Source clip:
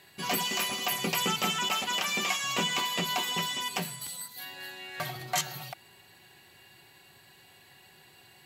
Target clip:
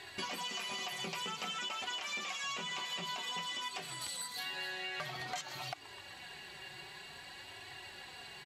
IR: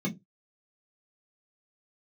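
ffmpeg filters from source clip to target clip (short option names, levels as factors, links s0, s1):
-filter_complex "[0:a]alimiter=level_in=1.58:limit=0.0631:level=0:latency=1:release=498,volume=0.631,lowpass=6800,asplit=6[s0][s1][s2][s3][s4][s5];[s1]adelay=127,afreqshift=150,volume=0.126[s6];[s2]adelay=254,afreqshift=300,volume=0.0716[s7];[s3]adelay=381,afreqshift=450,volume=0.0407[s8];[s4]adelay=508,afreqshift=600,volume=0.0234[s9];[s5]adelay=635,afreqshift=750,volume=0.0133[s10];[s0][s6][s7][s8][s9][s10]amix=inputs=6:normalize=0,flanger=delay=2.6:depth=3:regen=-27:speed=0.52:shape=triangular,equalizer=f=230:t=o:w=1.5:g=-6.5,acompressor=threshold=0.00316:ratio=4,volume=3.76"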